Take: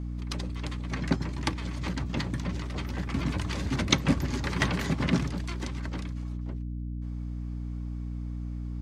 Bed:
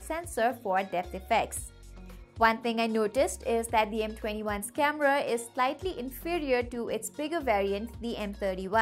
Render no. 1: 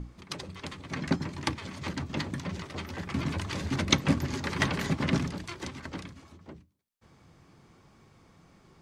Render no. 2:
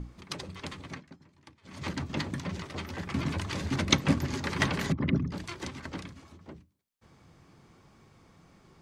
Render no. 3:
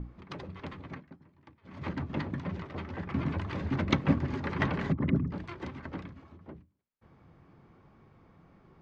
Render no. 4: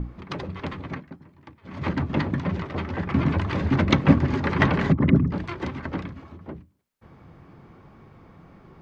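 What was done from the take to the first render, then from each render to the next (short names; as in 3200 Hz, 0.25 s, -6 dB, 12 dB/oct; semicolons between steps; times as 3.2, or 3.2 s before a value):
notches 60/120/180/240/300 Hz
0.85–1.81 dip -24 dB, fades 0.18 s; 4.92–5.32 formant sharpening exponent 2
Bessel low-pass 1700 Hz, order 2
gain +9.5 dB; limiter -2 dBFS, peak gain reduction 3 dB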